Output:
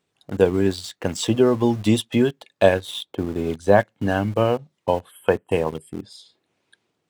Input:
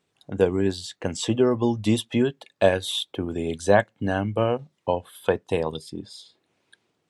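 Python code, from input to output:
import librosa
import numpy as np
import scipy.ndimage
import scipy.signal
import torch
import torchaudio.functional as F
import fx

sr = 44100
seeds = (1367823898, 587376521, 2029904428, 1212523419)

p1 = fx.high_shelf(x, sr, hz=2200.0, db=-8.5, at=(2.74, 3.81))
p2 = fx.spec_box(p1, sr, start_s=5.12, length_s=0.91, low_hz=3300.0, high_hz=7400.0, gain_db=-25)
p3 = np.where(np.abs(p2) >= 10.0 ** (-32.5 / 20.0), p2, 0.0)
p4 = p2 + (p3 * librosa.db_to_amplitude(-4.0))
y = p4 * librosa.db_to_amplitude(-1.0)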